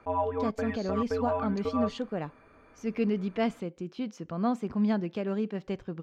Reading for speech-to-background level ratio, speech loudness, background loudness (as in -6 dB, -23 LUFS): 1.0 dB, -32.0 LUFS, -33.0 LUFS